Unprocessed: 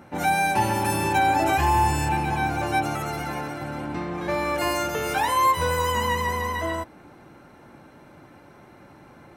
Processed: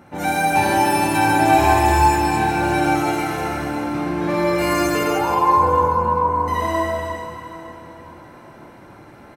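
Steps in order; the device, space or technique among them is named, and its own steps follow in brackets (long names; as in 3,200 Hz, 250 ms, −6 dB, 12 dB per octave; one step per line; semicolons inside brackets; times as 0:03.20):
0:05.03–0:06.48: Butterworth low-pass 1,400 Hz 72 dB per octave
cave (single-tap delay 310 ms −11 dB; convolution reverb RT60 2.7 s, pre-delay 43 ms, DRR −4 dB)
repeating echo 844 ms, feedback 39%, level −21 dB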